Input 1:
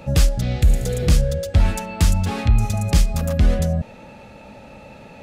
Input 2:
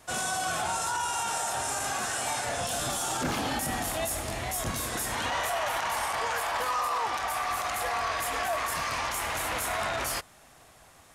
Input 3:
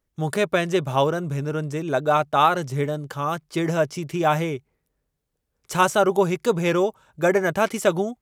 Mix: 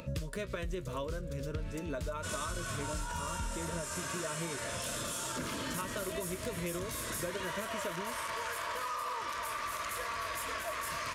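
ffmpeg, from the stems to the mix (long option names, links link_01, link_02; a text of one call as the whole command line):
ffmpeg -i stem1.wav -i stem2.wav -i stem3.wav -filter_complex "[0:a]dynaudnorm=framelen=390:gausssize=3:maxgain=13dB,volume=-12.5dB,asplit=2[link_01][link_02];[link_02]volume=-21.5dB[link_03];[1:a]adelay=2150,volume=-4dB,asplit=2[link_04][link_05];[link_05]volume=-9dB[link_06];[2:a]acompressor=threshold=-19dB:ratio=6,flanger=delay=9.6:depth=2.3:regen=49:speed=1.7:shape=triangular,volume=-5.5dB,asplit=2[link_07][link_08];[link_08]apad=whole_len=230320[link_09];[link_01][link_09]sidechaincompress=threshold=-40dB:ratio=8:attack=6.5:release=684[link_10];[link_03][link_06]amix=inputs=2:normalize=0,aecho=0:1:307:1[link_11];[link_10][link_04][link_07][link_11]amix=inputs=4:normalize=0,acompressor=mode=upward:threshold=-43dB:ratio=2.5,asuperstop=centerf=780:order=8:qfactor=3.6,acompressor=threshold=-34dB:ratio=6" out.wav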